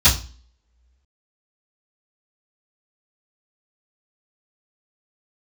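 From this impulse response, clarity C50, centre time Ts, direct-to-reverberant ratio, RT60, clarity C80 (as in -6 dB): 11.5 dB, 21 ms, -18.0 dB, 0.35 s, 17.0 dB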